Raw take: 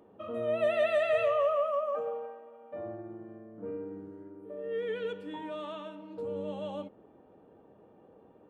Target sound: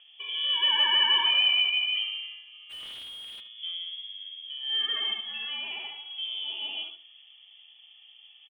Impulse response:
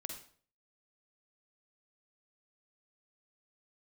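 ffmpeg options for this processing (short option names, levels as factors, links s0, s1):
-filter_complex "[0:a]asplit=2[s0][s1];[s1]aecho=0:1:74:0.562[s2];[s0][s2]amix=inputs=2:normalize=0,lowpass=f=3100:t=q:w=0.5098,lowpass=f=3100:t=q:w=0.6013,lowpass=f=3100:t=q:w=0.9,lowpass=f=3100:t=q:w=2.563,afreqshift=-3600,highpass=280,highshelf=f=2000:g=-5,asplit=3[s3][s4][s5];[s3]afade=t=out:st=2.69:d=0.02[s6];[s4]asplit=2[s7][s8];[s8]highpass=f=720:p=1,volume=63.1,asoftclip=type=tanh:threshold=0.0178[s9];[s7][s9]amix=inputs=2:normalize=0,lowpass=f=1200:p=1,volume=0.501,afade=t=in:st=2.69:d=0.02,afade=t=out:st=3.39:d=0.02[s10];[s5]afade=t=in:st=3.39:d=0.02[s11];[s6][s10][s11]amix=inputs=3:normalize=0,asplit=2[s12][s13];[s13]adelay=76,lowpass=f=1500:p=1,volume=0.299,asplit=2[s14][s15];[s15]adelay=76,lowpass=f=1500:p=1,volume=0.23,asplit=2[s16][s17];[s17]adelay=76,lowpass=f=1500:p=1,volume=0.23[s18];[s14][s16][s18]amix=inputs=3:normalize=0[s19];[s12][s19]amix=inputs=2:normalize=0,volume=2.11"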